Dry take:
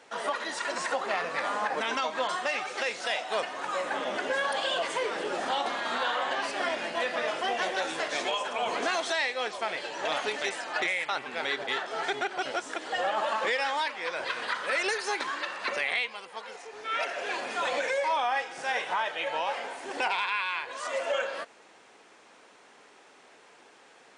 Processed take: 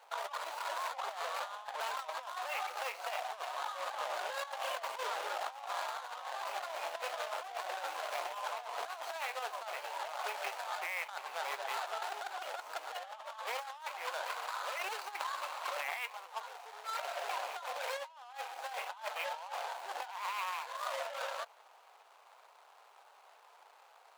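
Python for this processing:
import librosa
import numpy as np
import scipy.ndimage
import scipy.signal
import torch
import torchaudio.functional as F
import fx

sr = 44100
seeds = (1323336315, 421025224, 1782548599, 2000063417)

y = scipy.ndimage.median_filter(x, 25, mode='constant')
y = scipy.signal.sosfilt(scipy.signal.butter(4, 740.0, 'highpass', fs=sr, output='sos'), y)
y = fx.over_compress(y, sr, threshold_db=-40.0, ratio=-0.5)
y = y * librosa.db_to_amplitude(1.0)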